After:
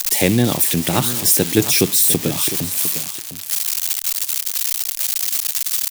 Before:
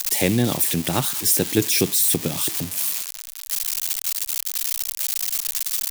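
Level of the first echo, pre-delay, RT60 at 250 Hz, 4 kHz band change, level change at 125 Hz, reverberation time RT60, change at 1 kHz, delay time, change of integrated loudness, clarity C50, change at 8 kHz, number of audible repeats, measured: −13.0 dB, no reverb audible, no reverb audible, +4.0 dB, +4.0 dB, no reverb audible, +4.0 dB, 705 ms, +4.0 dB, no reverb audible, +4.0 dB, 1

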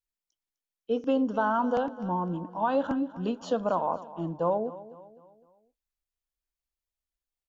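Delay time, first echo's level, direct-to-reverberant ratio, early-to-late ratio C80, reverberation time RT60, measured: 254 ms, −16.5 dB, no reverb audible, no reverb audible, no reverb audible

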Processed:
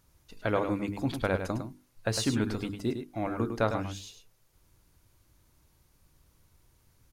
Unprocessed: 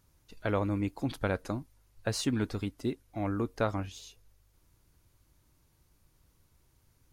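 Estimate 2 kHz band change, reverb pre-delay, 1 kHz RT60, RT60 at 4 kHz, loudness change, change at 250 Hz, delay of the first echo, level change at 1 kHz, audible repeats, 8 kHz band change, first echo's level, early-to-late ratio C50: +3.0 dB, no reverb audible, no reverb audible, no reverb audible, +2.0 dB, +1.5 dB, 104 ms, +3.0 dB, 1, +3.0 dB, −8.0 dB, no reverb audible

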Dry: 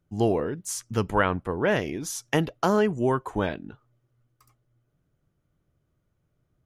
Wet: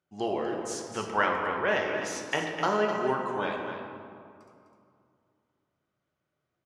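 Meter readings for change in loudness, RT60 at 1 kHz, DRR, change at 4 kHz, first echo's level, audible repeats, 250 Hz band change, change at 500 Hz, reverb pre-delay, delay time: −3.5 dB, 2.4 s, 0.0 dB, −0.5 dB, −8.5 dB, 1, −7.5 dB, −3.5 dB, 5 ms, 254 ms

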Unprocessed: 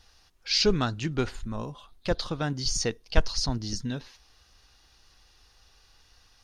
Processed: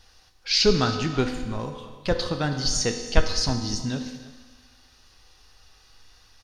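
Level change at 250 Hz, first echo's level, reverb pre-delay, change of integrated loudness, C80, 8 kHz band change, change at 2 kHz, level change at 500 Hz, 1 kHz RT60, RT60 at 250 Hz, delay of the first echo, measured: +4.0 dB, −18.0 dB, 4 ms, +4.0 dB, 8.0 dB, +4.0 dB, +4.0 dB, +4.5 dB, 1.5 s, 1.4 s, 323 ms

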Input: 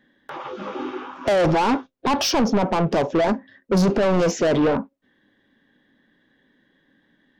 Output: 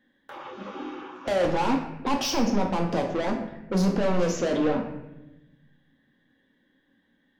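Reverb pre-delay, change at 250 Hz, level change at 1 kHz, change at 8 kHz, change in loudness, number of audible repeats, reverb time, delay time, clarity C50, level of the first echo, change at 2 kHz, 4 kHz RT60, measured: 4 ms, −4.5 dB, −6.0 dB, −5.0 dB, −5.5 dB, no echo audible, 1.0 s, no echo audible, 7.5 dB, no echo audible, −6.0 dB, 0.65 s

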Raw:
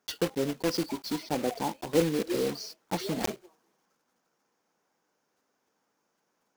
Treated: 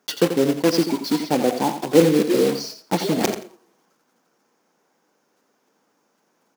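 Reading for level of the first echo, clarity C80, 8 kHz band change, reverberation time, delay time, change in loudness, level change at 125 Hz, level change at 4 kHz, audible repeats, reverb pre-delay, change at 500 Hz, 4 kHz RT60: −9.5 dB, no reverb audible, +8.5 dB, no reverb audible, 86 ms, +10.5 dB, +9.5 dB, +8.5 dB, 2, no reverb audible, +11.0 dB, no reverb audible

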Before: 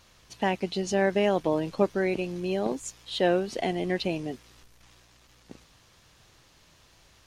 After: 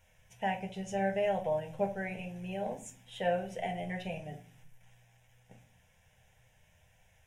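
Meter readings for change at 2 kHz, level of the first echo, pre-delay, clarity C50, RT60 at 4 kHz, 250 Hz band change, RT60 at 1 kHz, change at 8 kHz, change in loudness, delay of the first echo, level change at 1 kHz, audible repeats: −7.0 dB, no echo audible, 6 ms, 12.5 dB, 0.35 s, −10.5 dB, 0.40 s, −10.5 dB, −7.5 dB, no echo audible, −4.0 dB, no echo audible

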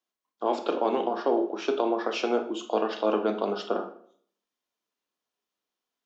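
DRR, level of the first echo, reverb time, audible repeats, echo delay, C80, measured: 6.5 dB, no echo audible, 0.55 s, no echo audible, no echo audible, 14.5 dB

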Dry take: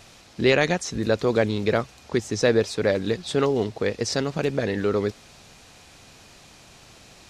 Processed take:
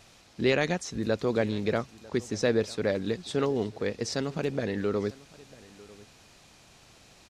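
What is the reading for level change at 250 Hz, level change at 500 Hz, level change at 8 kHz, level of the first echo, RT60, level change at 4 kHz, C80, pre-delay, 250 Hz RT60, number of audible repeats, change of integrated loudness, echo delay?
−4.0 dB, −6.0 dB, −6.5 dB, −22.0 dB, no reverb audible, −6.5 dB, no reverb audible, no reverb audible, no reverb audible, 1, −5.5 dB, 947 ms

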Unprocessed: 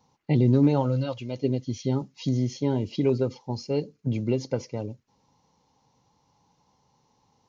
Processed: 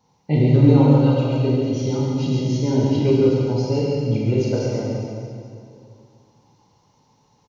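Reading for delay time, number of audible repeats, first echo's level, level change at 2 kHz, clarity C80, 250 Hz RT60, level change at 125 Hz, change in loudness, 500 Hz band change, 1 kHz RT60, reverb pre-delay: 138 ms, 1, −5.5 dB, +7.0 dB, −1.5 dB, 2.7 s, +8.5 dB, +7.5 dB, +7.5 dB, 2.2 s, 15 ms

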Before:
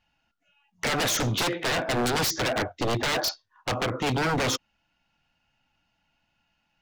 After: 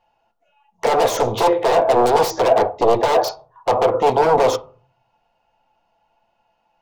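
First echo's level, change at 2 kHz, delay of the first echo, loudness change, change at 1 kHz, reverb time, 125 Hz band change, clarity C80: no echo audible, −0.5 dB, no echo audible, +9.0 dB, +13.5 dB, 0.45 s, −1.5 dB, 24.0 dB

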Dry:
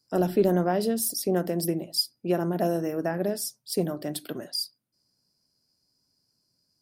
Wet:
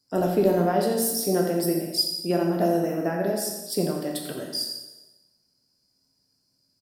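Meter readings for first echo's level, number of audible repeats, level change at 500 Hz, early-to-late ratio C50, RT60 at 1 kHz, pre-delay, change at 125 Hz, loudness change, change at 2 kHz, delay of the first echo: −10.0 dB, 1, +2.5 dB, 3.0 dB, 1.1 s, 6 ms, +1.0 dB, +2.5 dB, +2.5 dB, 86 ms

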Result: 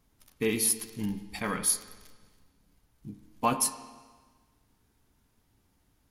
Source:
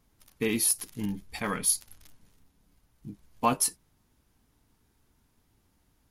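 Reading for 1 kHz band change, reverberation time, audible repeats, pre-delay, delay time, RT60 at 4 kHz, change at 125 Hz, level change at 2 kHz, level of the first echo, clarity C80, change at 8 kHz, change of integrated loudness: −1.0 dB, 1.4 s, no echo audible, 9 ms, no echo audible, 1.4 s, −0.5 dB, −0.5 dB, no echo audible, 12.5 dB, −1.0 dB, −1.0 dB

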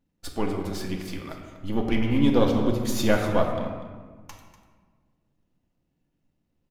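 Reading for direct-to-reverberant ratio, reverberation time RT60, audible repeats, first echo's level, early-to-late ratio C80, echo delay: 1.0 dB, 1.5 s, 1, −14.0 dB, 5.5 dB, 244 ms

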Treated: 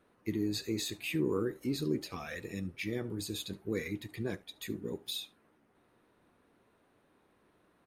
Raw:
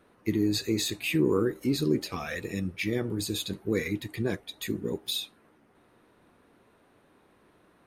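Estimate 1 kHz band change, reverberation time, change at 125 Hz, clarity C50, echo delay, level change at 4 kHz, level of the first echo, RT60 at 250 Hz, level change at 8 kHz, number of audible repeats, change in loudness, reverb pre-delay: −7.0 dB, no reverb audible, −7.0 dB, no reverb audible, 72 ms, −7.0 dB, −23.0 dB, no reverb audible, −7.0 dB, 1, −7.0 dB, no reverb audible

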